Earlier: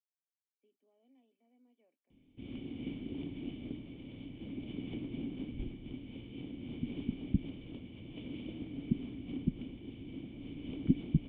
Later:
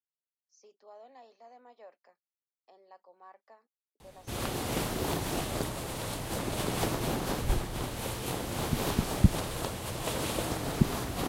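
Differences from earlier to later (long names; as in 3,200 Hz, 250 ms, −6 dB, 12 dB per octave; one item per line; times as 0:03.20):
background: entry +1.90 s
master: remove formant resonators in series i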